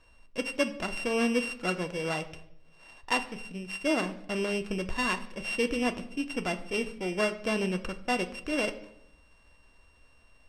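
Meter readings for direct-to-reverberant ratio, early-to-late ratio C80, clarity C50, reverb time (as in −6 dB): 7.0 dB, 16.5 dB, 14.5 dB, 0.75 s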